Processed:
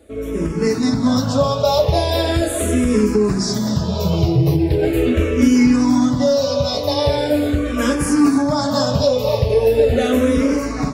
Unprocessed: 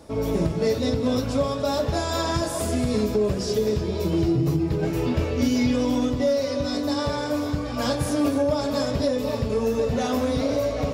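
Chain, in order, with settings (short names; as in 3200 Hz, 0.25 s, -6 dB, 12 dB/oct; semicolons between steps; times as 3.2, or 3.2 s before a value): AGC gain up to 12.5 dB; endless phaser -0.4 Hz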